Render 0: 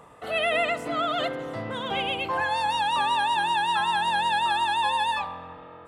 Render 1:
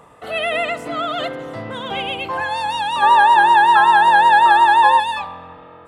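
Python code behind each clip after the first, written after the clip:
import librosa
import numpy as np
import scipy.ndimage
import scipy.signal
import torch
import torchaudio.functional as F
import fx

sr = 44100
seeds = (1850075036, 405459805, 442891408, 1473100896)

y = fx.spec_box(x, sr, start_s=3.03, length_s=1.97, low_hz=320.0, high_hz=1900.0, gain_db=10)
y = F.gain(torch.from_numpy(y), 3.5).numpy()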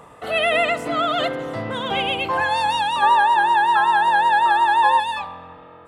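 y = fx.rider(x, sr, range_db=4, speed_s=0.5)
y = F.gain(torch.from_numpy(y), -2.0).numpy()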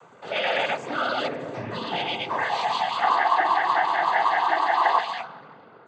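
y = fx.noise_vocoder(x, sr, seeds[0], bands=16)
y = F.gain(torch.from_numpy(y), -5.0).numpy()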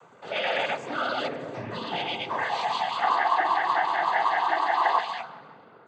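y = fx.echo_feedback(x, sr, ms=177, feedback_pct=42, wet_db=-23.0)
y = F.gain(torch.from_numpy(y), -2.5).numpy()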